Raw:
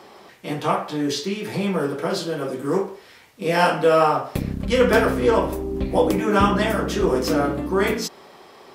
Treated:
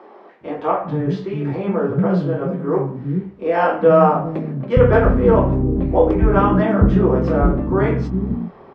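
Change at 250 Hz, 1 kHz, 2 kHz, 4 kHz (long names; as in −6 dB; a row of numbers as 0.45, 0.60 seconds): +5.0 dB, +2.0 dB, −2.5 dB, below −10 dB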